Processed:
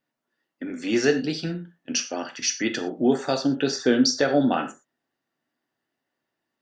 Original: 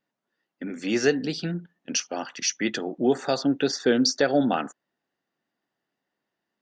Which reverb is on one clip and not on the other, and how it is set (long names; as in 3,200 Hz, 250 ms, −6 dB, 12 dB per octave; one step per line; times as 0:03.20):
reverb whose tail is shaped and stops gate 140 ms falling, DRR 5.5 dB